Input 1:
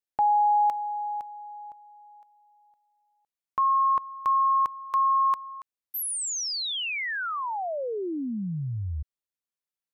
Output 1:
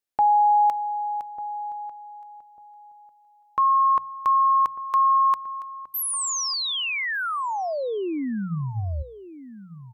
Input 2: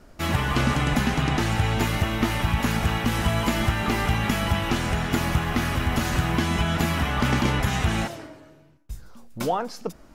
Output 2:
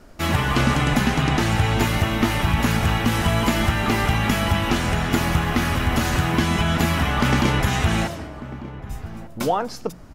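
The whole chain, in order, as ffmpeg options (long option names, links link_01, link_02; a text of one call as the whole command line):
ffmpeg -i in.wav -filter_complex "[0:a]bandreject=frequency=60:width_type=h:width=6,bandreject=frequency=120:width_type=h:width=6,bandreject=frequency=180:width_type=h:width=6,asplit=2[link_01][link_02];[link_02]adelay=1196,lowpass=frequency=830:poles=1,volume=-14dB,asplit=2[link_03][link_04];[link_04]adelay=1196,lowpass=frequency=830:poles=1,volume=0.24,asplit=2[link_05][link_06];[link_06]adelay=1196,lowpass=frequency=830:poles=1,volume=0.24[link_07];[link_03][link_05][link_07]amix=inputs=3:normalize=0[link_08];[link_01][link_08]amix=inputs=2:normalize=0,volume=3.5dB" out.wav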